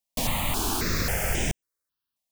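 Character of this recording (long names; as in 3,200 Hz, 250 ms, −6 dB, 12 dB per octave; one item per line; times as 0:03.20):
notches that jump at a steady rate 3.7 Hz 380–4,300 Hz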